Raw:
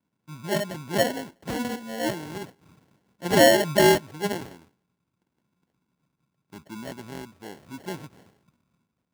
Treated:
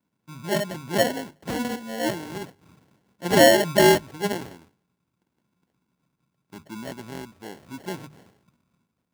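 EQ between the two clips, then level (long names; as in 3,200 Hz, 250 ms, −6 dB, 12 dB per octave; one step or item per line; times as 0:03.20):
mains-hum notches 50/100/150 Hz
+1.5 dB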